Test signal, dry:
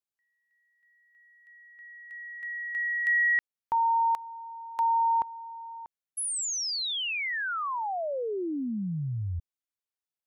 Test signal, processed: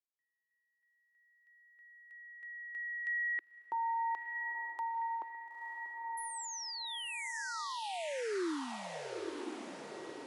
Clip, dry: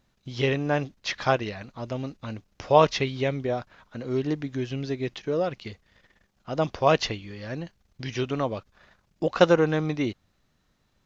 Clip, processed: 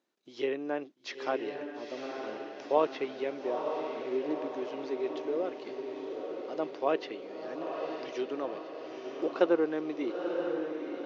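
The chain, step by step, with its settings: low-pass that closes with the level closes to 2.9 kHz, closed at -20 dBFS; ladder high-pass 290 Hz, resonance 50%; on a send: echo that smears into a reverb 936 ms, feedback 58%, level -5 dB; on the sum: trim -1.5 dB

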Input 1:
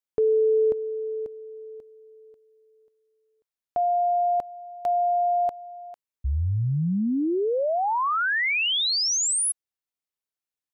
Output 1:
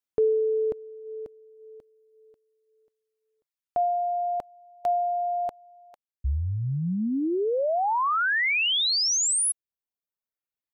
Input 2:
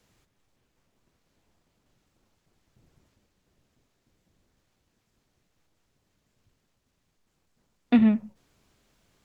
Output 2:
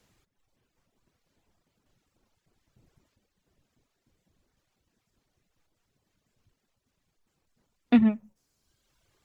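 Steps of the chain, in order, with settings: reverb removal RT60 1.2 s

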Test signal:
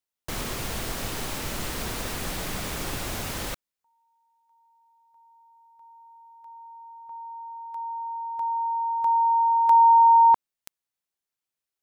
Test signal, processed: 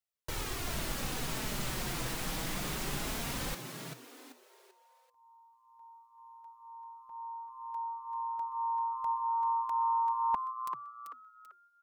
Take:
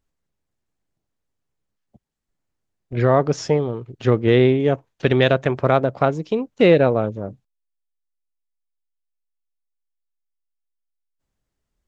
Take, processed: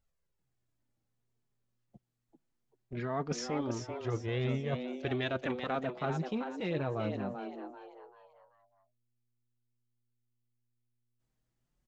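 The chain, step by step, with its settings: flange 0.22 Hz, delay 1.4 ms, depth 5.1 ms, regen -16%; reverse; compression, threshold -26 dBFS; reverse; dynamic bell 490 Hz, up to -7 dB, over -43 dBFS, Q 1.4; frequency-shifting echo 388 ms, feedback 35%, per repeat +120 Hz, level -7 dB; trim -2 dB

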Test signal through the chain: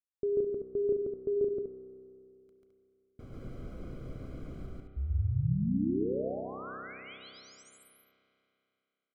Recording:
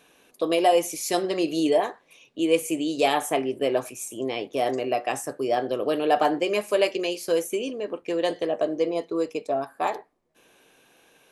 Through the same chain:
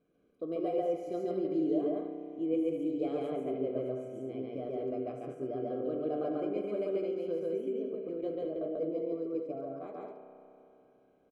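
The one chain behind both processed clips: boxcar filter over 49 samples; loudspeakers at several distances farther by 48 m 0 dB, 73 m -6 dB; spring tank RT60 2.9 s, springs 31 ms, chirp 75 ms, DRR 6.5 dB; trim -8.5 dB

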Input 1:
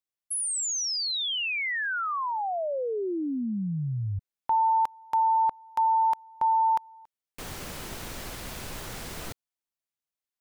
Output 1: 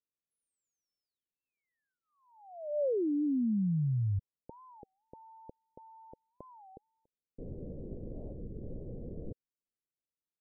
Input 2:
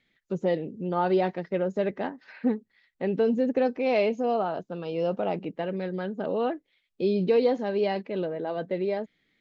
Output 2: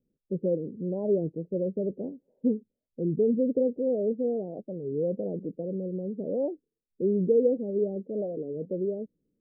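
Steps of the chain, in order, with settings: elliptic low-pass 520 Hz, stop band 60 dB; warped record 33 1/3 rpm, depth 250 cents

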